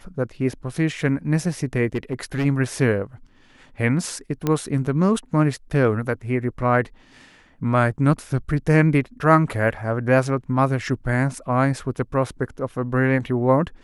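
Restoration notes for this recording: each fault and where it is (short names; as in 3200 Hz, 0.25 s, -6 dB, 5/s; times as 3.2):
1.94–2.46 clipped -19 dBFS
4.47 pop -9 dBFS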